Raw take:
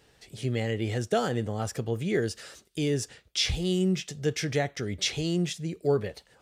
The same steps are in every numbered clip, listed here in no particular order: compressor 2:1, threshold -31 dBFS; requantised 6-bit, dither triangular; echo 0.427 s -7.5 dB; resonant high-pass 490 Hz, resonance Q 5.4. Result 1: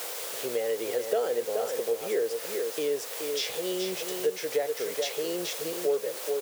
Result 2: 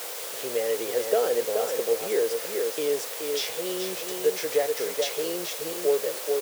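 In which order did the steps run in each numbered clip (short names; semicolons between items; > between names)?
echo > requantised > resonant high-pass > compressor; echo > compressor > requantised > resonant high-pass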